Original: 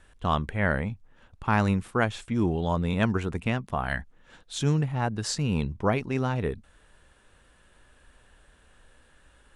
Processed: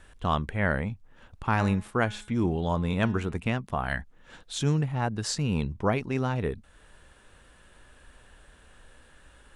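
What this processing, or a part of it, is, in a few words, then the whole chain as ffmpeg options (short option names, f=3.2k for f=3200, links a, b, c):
parallel compression: -filter_complex "[0:a]asettb=1/sr,asplit=3[a][b][c];[a]atrim=end=1.474[d];[b]atrim=start=1.47:end=3.38,asetpts=PTS-STARTPTS,afade=t=in:d=0.004:c=qsin,afade=t=out:st=1.906:d=0.004:c=qsin,bandreject=f=210.4:t=h:w=4,bandreject=f=420.8:t=h:w=4,bandreject=f=631.2:t=h:w=4,bandreject=f=841.6:t=h:w=4,bandreject=f=1.052k:t=h:w=4,bandreject=f=1.2624k:t=h:w=4,bandreject=f=1.4728k:t=h:w=4,bandreject=f=1.6832k:t=h:w=4,bandreject=f=1.8936k:t=h:w=4,bandreject=f=2.104k:t=h:w=4,bandreject=f=2.3144k:t=h:w=4,bandreject=f=2.5248k:t=h:w=4,bandreject=f=2.7352k:t=h:w=4,bandreject=f=2.9456k:t=h:w=4,bandreject=f=3.156k:t=h:w=4,bandreject=f=3.3664k:t=h:w=4,bandreject=f=3.5768k:t=h:w=4,bandreject=f=3.7872k:t=h:w=4,bandreject=f=3.9976k:t=h:w=4[e];[c]atrim=start=3.376[f];[d][e]acrossfade=d=0.004:c1=hsin:c2=qsin[g];[g][f]acrossfade=d=0.004:c1=qsin:c2=hsin,asplit=2[h][i];[i]acompressor=threshold=-44dB:ratio=6,volume=-2dB[j];[h][j]amix=inputs=2:normalize=0,volume=-1.5dB"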